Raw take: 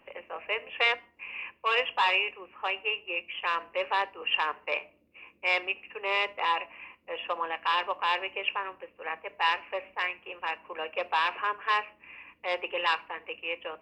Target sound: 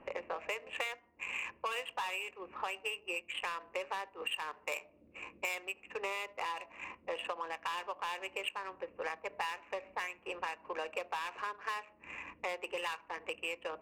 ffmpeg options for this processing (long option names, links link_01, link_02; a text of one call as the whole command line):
ffmpeg -i in.wav -filter_complex "[0:a]adynamicsmooth=sensitivity=6.5:basefreq=1500,asettb=1/sr,asplit=3[link_01][link_02][link_03];[link_01]atrim=end=4.514[link_04];[link_02]atrim=start=4.51:end=5.55,asetpts=PTS-STARTPTS,afade=type=in:duration=0.004:curve=qsin,afade=type=out:start_time=1.036:duration=0.004:curve=qsin,highshelf=frequency=4800:gain=8[link_05];[link_03]atrim=start=5.546[link_06];[link_04][link_05]acrossfade=duration=0.004:curve1=hsin:curve2=qsin[link_07];[link_07][link_06]acrossfade=duration=0.004:curve1=qsin:curve2=hsin,acompressor=threshold=-43dB:ratio=12,volume=7.5dB" out.wav